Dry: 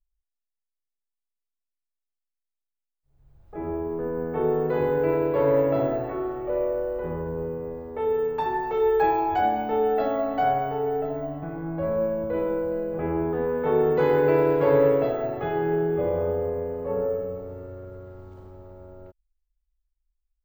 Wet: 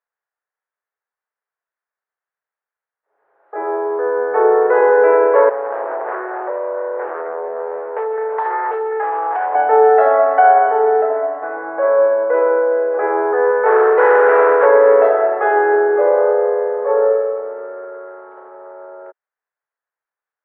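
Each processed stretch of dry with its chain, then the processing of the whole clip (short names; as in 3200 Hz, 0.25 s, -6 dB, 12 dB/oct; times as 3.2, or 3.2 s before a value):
5.49–9.55 high shelf 5100 Hz +11.5 dB + compressor 16:1, threshold -30 dBFS + Doppler distortion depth 0.67 ms
13.51–14.66 hard clip -18.5 dBFS + low shelf 190 Hz -9.5 dB
whole clip: elliptic band-pass 420–1700 Hz, stop band 70 dB; tilt +3.5 dB/oct; maximiser +17.5 dB; gain -1 dB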